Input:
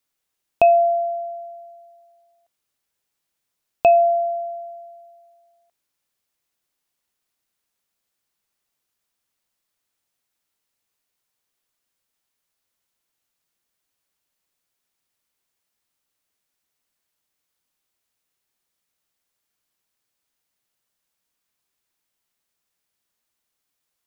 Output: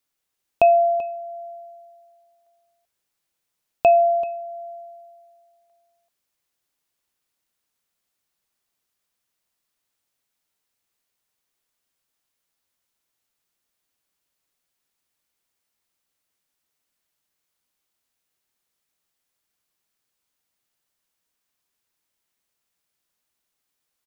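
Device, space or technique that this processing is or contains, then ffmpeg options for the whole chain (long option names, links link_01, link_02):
ducked delay: -filter_complex "[0:a]asplit=3[link_01][link_02][link_03];[link_02]adelay=386,volume=-6.5dB[link_04];[link_03]apad=whole_len=1078300[link_05];[link_04][link_05]sidechaincompress=threshold=-30dB:ratio=8:attack=16:release=353[link_06];[link_01][link_06]amix=inputs=2:normalize=0,volume=-1dB"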